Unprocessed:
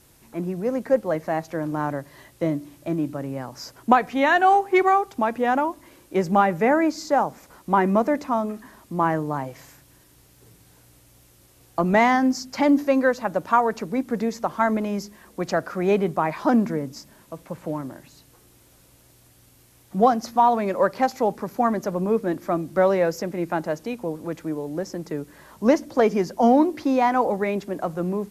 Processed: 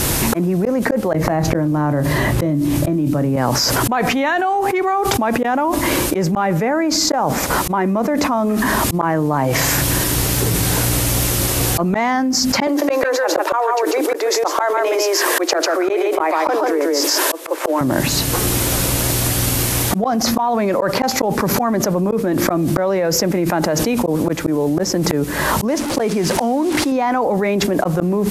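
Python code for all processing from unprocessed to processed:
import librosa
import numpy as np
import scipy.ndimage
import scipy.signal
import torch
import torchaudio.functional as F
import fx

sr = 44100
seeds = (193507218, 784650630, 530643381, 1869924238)

y = fx.chain(x, sr, fx.low_shelf(hz=340.0, db=10.0),
    fx.doubler(ms=27.0, db=-12.5),
    fx.band_squash(depth_pct=100), at=(1.13, 3.36))
y = fx.chain(y, sr, fx.steep_highpass(hz=310.0, slope=96),
    fx.echo_single(ms=145, db=-4.0), at=(12.67, 17.81))
y = fx.chain(y, sr, fx.delta_mod(bps=64000, step_db=-32.0),
    fx.upward_expand(threshold_db=-36.0, expansion=1.5), at=(25.68, 26.92))
y = fx.auto_swell(y, sr, attack_ms=788.0)
y = fx.env_flatten(y, sr, amount_pct=100)
y = y * librosa.db_to_amplitude(-2.5)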